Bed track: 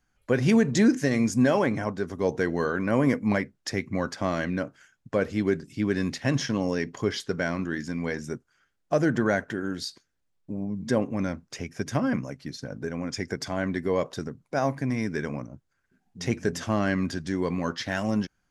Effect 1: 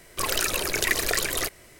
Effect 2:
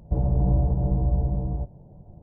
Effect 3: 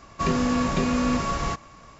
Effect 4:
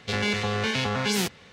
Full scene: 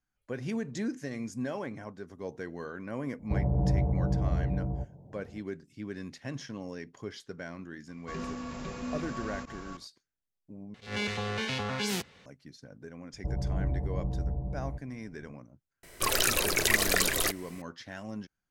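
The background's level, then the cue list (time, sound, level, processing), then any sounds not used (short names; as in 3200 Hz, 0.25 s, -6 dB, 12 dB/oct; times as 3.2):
bed track -13.5 dB
3.19 add 2 -3 dB + HPF 69 Hz
7.88 add 3 -16 dB + reverse delay 0.315 s, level -2.5 dB
10.74 replace with 4 -6.5 dB + attack slew limiter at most 160 dB/s
13.13 add 2 -9.5 dB
15.83 add 1 -1 dB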